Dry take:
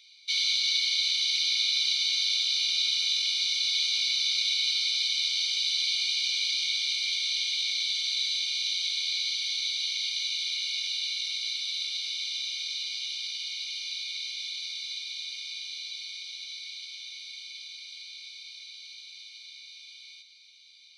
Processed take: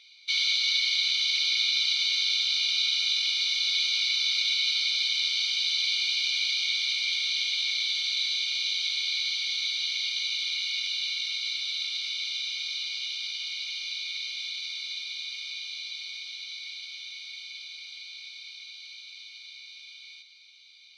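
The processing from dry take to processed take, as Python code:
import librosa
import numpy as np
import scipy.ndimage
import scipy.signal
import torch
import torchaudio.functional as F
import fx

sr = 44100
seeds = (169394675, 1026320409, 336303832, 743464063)

y = fx.lowpass(x, sr, hz=1800.0, slope=6)
y = F.gain(torch.from_numpy(y), 8.0).numpy()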